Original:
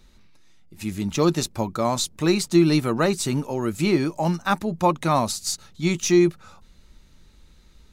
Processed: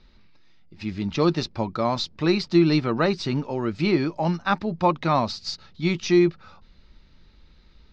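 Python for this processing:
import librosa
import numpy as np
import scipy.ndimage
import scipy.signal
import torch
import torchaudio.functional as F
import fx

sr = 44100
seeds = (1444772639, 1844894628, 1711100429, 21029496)

y = scipy.signal.sosfilt(scipy.signal.cheby1(4, 1.0, 5000.0, 'lowpass', fs=sr, output='sos'), x)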